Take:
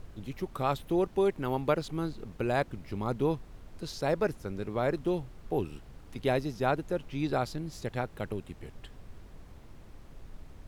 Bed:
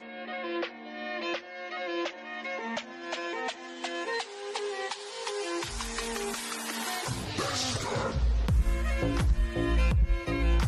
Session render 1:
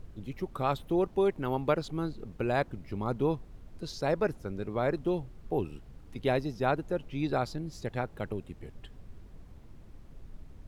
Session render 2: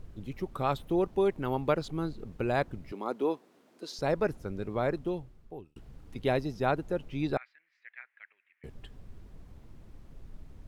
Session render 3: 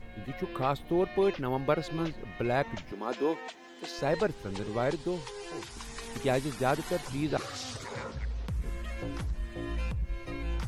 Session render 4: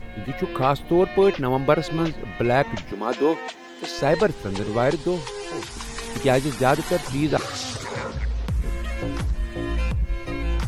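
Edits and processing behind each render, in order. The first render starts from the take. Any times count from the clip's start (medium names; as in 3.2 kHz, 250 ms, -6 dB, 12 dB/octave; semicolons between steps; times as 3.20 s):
noise reduction 6 dB, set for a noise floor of -51 dBFS
2.92–3.99 s: high-pass 260 Hz 24 dB/octave; 4.81–5.76 s: fade out; 7.37–8.64 s: Butterworth band-pass 2 kHz, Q 2.8
add bed -8.5 dB
trim +9 dB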